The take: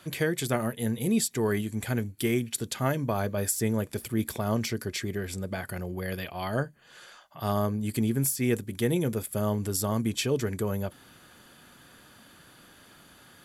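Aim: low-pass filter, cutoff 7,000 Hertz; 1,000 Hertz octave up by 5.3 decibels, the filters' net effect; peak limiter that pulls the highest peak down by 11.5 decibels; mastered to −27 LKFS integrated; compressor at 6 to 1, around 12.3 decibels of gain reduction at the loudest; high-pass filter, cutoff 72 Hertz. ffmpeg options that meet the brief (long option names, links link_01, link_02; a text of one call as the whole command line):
ffmpeg -i in.wav -af "highpass=72,lowpass=7000,equalizer=frequency=1000:width_type=o:gain=7,acompressor=threshold=-34dB:ratio=6,volume=16.5dB,alimiter=limit=-16dB:level=0:latency=1" out.wav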